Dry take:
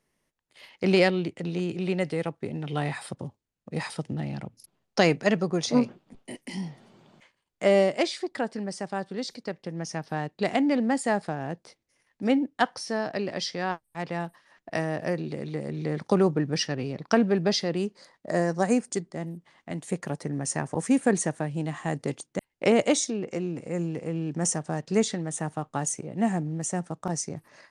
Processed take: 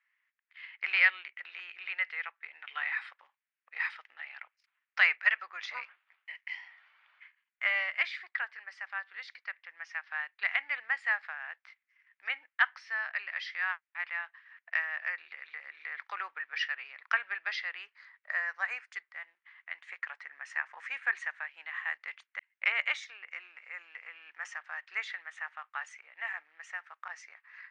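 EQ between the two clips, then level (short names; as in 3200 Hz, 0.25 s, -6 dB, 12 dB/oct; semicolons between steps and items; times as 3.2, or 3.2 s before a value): HPF 1300 Hz 24 dB/oct; synth low-pass 2100 Hz, resonance Q 2.3; air absorption 75 m; 0.0 dB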